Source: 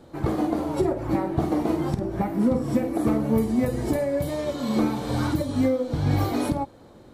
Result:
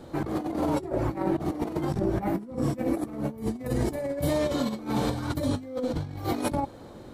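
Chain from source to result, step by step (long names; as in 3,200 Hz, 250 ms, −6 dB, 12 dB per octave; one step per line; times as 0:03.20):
compressor whose output falls as the input rises −28 dBFS, ratio −0.5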